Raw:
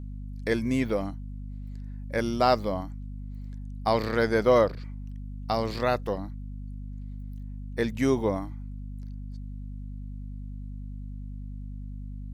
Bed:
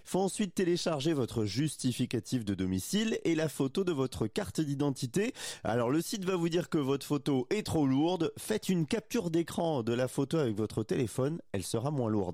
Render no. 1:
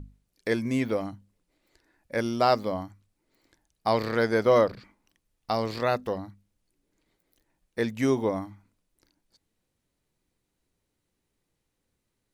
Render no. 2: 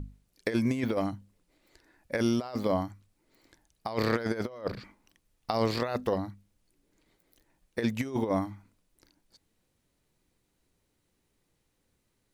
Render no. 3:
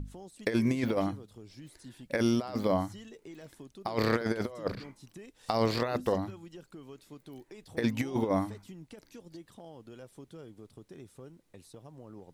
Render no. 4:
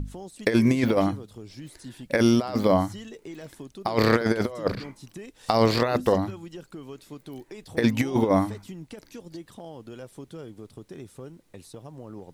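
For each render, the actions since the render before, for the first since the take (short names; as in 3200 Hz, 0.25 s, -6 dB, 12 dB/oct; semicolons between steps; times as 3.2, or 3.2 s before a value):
notches 50/100/150/200/250 Hz
negative-ratio compressor -28 dBFS, ratio -0.5
add bed -18 dB
gain +7.5 dB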